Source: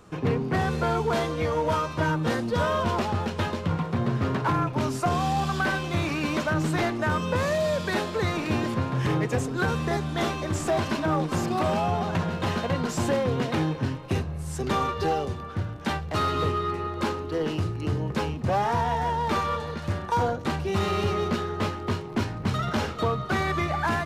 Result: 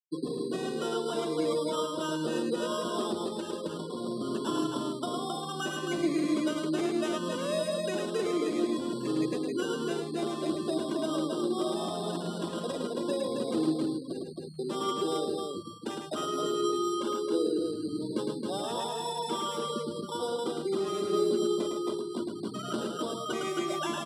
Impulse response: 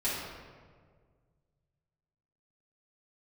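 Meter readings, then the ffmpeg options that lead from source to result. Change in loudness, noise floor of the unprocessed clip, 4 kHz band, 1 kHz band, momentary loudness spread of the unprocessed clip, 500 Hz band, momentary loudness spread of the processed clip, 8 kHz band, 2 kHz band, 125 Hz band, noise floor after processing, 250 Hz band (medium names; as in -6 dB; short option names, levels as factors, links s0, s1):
-5.0 dB, -36 dBFS, -1.5 dB, -9.0 dB, 4 LU, -2.5 dB, 6 LU, -1.5 dB, -12.5 dB, -16.5 dB, -39 dBFS, -2.0 dB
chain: -filter_complex "[0:a]afftfilt=real='re*gte(hypot(re,im),0.0631)':imag='im*gte(hypot(re,im),0.0631)':win_size=1024:overlap=0.75,acrossover=split=2500[s0][s1];[s1]acompressor=threshold=0.00447:ratio=4:attack=1:release=60[s2];[s0][s2]amix=inputs=2:normalize=0,highshelf=f=3100:g=-10.5,acrossover=split=4700[s3][s4];[s3]alimiter=level_in=1.06:limit=0.0631:level=0:latency=1:release=193,volume=0.944[s5];[s4]aeval=exprs='(mod(2370*val(0)+1,2)-1)/2370':c=same[s6];[s5][s6]amix=inputs=2:normalize=0,aphaser=in_gain=1:out_gain=1:delay=2.5:decay=0.26:speed=0.66:type=triangular,acrusher=samples=10:mix=1:aa=0.000001,highpass=f=220:w=0.5412,highpass=f=220:w=1.3066,equalizer=f=340:t=q:w=4:g=7,equalizer=f=830:t=q:w=4:g=-9,equalizer=f=1700:t=q:w=4:g=-4,equalizer=f=5600:t=q:w=4:g=-4,lowpass=f=9800:w=0.5412,lowpass=f=9800:w=1.3066,aecho=1:1:107.9|268.2:0.631|0.631"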